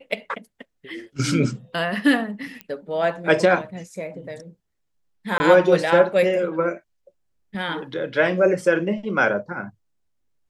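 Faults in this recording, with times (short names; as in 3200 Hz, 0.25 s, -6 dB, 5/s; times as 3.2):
2.61 pop -18 dBFS
5.38–5.4 gap 20 ms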